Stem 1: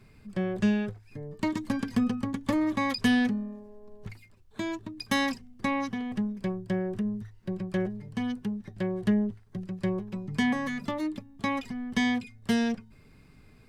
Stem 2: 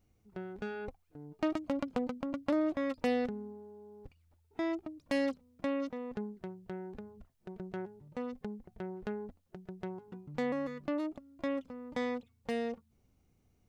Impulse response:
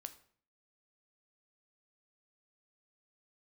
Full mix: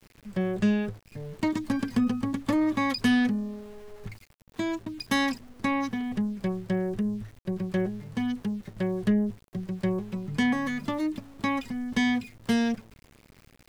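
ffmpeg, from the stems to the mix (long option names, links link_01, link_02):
-filter_complex "[0:a]asoftclip=type=tanh:threshold=-14.5dB,volume=1dB,asplit=2[link_01][link_02];[link_02]volume=-18dB[link_03];[1:a]equalizer=frequency=1800:width=0.46:gain=-11.5,acompressor=threshold=-43dB:ratio=6,aeval=exprs='val(0)+0.000794*(sin(2*PI*50*n/s)+sin(2*PI*2*50*n/s)/2+sin(2*PI*3*50*n/s)/3+sin(2*PI*4*50*n/s)/4+sin(2*PI*5*50*n/s)/5)':channel_layout=same,volume=2dB[link_04];[2:a]atrim=start_sample=2205[link_05];[link_03][link_05]afir=irnorm=-1:irlink=0[link_06];[link_01][link_04][link_06]amix=inputs=3:normalize=0,aeval=exprs='val(0)*gte(abs(val(0)),0.00376)':channel_layout=same"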